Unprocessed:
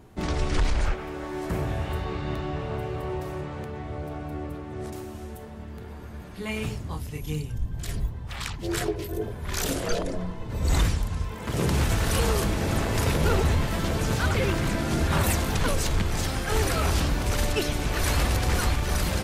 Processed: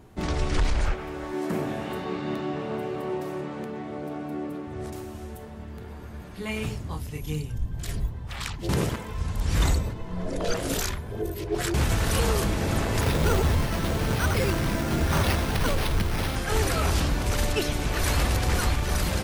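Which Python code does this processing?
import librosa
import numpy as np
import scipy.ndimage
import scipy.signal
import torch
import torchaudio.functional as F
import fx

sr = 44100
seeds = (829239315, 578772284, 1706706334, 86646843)

y = fx.highpass_res(x, sr, hz=220.0, q=1.9, at=(1.33, 4.67))
y = fx.resample_bad(y, sr, factor=6, down='none', up='hold', at=(13.01, 16.36))
y = fx.edit(y, sr, fx.reverse_span(start_s=8.69, length_s=3.05), tone=tone)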